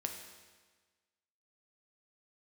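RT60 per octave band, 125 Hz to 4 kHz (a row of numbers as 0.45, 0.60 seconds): 1.4, 1.4, 1.4, 1.4, 1.4, 1.3 seconds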